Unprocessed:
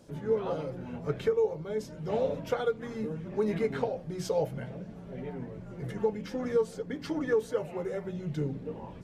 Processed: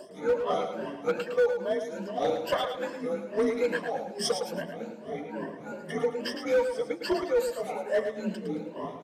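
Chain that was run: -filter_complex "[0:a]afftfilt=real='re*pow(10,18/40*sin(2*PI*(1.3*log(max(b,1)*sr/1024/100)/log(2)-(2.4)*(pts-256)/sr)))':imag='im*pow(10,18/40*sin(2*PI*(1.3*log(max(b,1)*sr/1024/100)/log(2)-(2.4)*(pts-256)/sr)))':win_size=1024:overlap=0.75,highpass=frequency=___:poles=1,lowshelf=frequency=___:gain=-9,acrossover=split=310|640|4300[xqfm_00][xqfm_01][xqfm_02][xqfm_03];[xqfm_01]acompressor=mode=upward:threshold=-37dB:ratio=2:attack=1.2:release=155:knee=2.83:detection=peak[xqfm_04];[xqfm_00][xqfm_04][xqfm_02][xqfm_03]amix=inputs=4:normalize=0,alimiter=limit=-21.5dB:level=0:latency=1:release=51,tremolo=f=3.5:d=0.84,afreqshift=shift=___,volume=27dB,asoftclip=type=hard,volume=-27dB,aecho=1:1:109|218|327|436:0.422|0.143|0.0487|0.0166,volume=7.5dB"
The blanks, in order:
150, 260, 39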